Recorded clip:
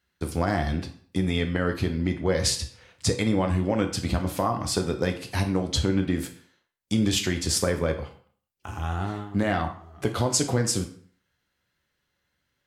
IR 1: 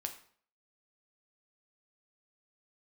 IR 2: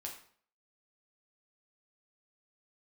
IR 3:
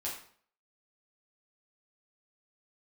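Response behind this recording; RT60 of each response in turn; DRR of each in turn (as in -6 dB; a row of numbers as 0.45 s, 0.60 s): 1; 0.50 s, 0.50 s, 0.50 s; 4.5 dB, -1.0 dB, -6.0 dB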